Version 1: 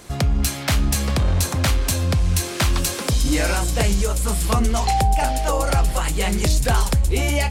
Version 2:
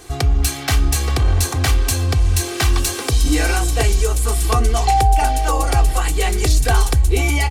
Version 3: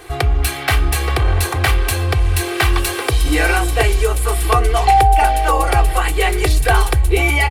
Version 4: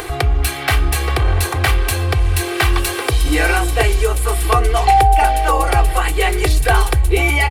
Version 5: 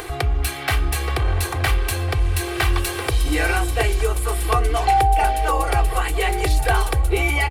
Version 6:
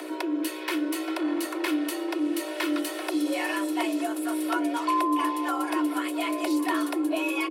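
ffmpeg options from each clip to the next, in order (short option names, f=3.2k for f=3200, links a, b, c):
-af "aecho=1:1:2.6:0.81"
-af "firequalizer=gain_entry='entry(130,0);entry(230,-12);entry(330,4);entry(2100,7);entry(6300,-8);entry(10000,1)':delay=0.05:min_phase=1"
-af "acompressor=mode=upward:threshold=-19dB:ratio=2.5"
-filter_complex "[0:a]asplit=2[a][b];[b]adelay=1399,volume=-12dB,highshelf=f=4k:g=-31.5[c];[a][c]amix=inputs=2:normalize=0,volume=-5dB"
-af "aeval=exprs='val(0)+0.0398*(sin(2*PI*60*n/s)+sin(2*PI*2*60*n/s)/2+sin(2*PI*3*60*n/s)/3+sin(2*PI*4*60*n/s)/4+sin(2*PI*5*60*n/s)/5)':c=same,afreqshift=250,volume=-9dB"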